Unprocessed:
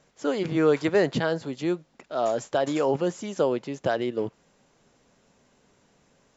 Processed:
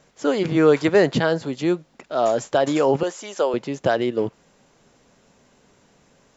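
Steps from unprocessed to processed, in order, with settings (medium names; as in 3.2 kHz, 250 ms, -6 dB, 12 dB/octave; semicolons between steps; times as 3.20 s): 3.03–3.54 s: high-pass 510 Hz 12 dB/octave; trim +5.5 dB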